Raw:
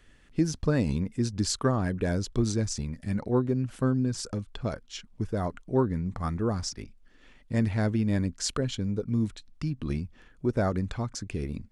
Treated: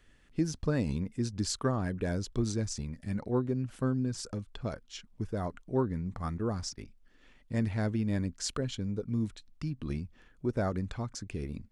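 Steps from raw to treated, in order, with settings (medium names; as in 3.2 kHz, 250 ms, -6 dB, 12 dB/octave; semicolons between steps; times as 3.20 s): 6.38–6.78 s: gate -37 dBFS, range -11 dB; trim -4.5 dB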